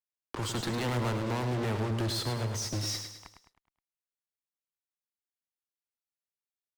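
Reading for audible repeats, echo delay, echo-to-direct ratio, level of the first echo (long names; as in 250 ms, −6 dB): 5, 105 ms, −6.5 dB, −7.5 dB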